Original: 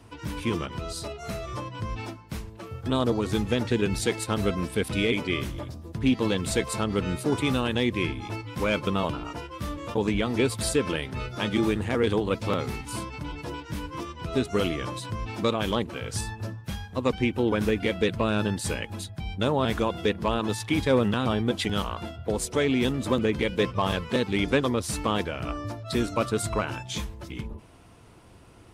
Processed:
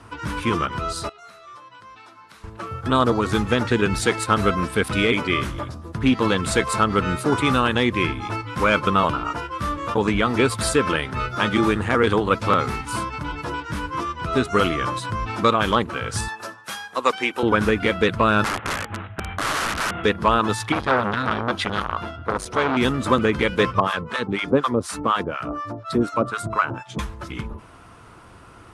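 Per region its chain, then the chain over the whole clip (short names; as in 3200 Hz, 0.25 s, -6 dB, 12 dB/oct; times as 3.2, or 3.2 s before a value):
1.09–2.44 HPF 770 Hz 6 dB/oct + bell 3900 Hz +5.5 dB 0.25 oct + compressor 8:1, threshold -51 dBFS
16.28–17.43 HPF 440 Hz + high shelf 4900 Hz +9 dB
18.44–20.04 CVSD 16 kbps + HPF 60 Hz 24 dB/oct + wrapped overs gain 27 dB
20.72–22.77 high shelf 10000 Hz -8.5 dB + notch 7600 Hz, Q 7.9 + core saturation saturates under 1200 Hz
23.8–26.99 HPF 120 Hz + harmonic tremolo 4.1 Hz, depth 100%, crossover 800 Hz + tilt shelf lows +3.5 dB, about 1300 Hz
whole clip: steep low-pass 12000 Hz 72 dB/oct; bell 1300 Hz +11 dB 0.93 oct; gain +4 dB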